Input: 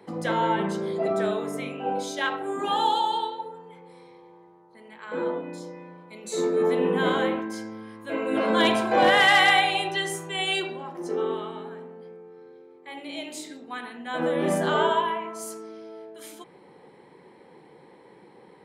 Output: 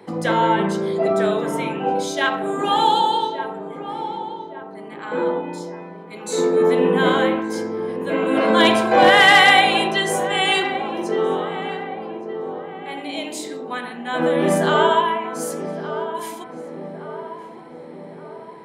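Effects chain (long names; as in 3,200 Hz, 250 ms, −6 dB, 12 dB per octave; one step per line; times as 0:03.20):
feedback echo with a low-pass in the loop 1,169 ms, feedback 60%, low-pass 1,300 Hz, level −10 dB
level +6.5 dB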